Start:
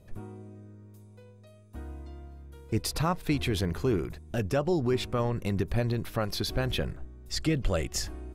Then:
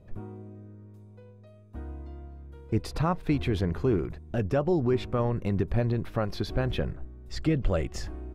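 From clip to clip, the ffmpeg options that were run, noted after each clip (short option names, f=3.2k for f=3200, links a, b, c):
-af "lowpass=f=1.5k:p=1,volume=2dB"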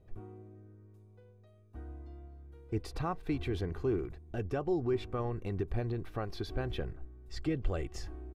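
-af "aecho=1:1:2.6:0.41,volume=-8dB"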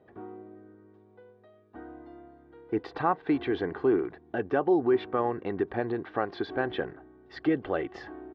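-af "highpass=270,equalizer=f=280:t=q:w=4:g=3,equalizer=f=850:t=q:w=4:g=5,equalizer=f=1.7k:t=q:w=4:g=6,equalizer=f=2.5k:t=q:w=4:g=-7,lowpass=f=3.4k:w=0.5412,lowpass=f=3.4k:w=1.3066,volume=8.5dB"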